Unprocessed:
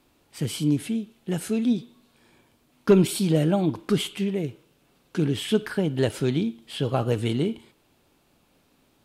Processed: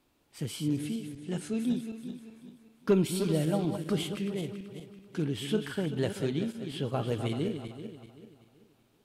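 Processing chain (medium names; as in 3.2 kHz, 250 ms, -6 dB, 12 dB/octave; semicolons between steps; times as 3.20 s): backward echo that repeats 192 ms, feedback 58%, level -8 dB; 1.15–1.60 s: low-pass 9.8 kHz 24 dB/octave; trim -7.5 dB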